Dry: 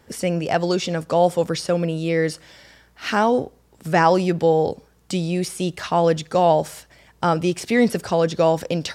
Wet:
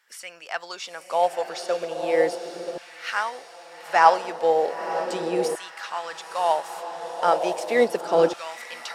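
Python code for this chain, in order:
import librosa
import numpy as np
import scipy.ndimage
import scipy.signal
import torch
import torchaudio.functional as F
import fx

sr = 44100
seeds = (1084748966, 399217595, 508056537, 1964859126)

y = fx.echo_diffused(x, sr, ms=938, feedback_pct=62, wet_db=-7)
y = fx.filter_lfo_highpass(y, sr, shape='saw_down', hz=0.36, low_hz=340.0, high_hz=1600.0, q=1.4)
y = fx.upward_expand(y, sr, threshold_db=-25.0, expansion=1.5)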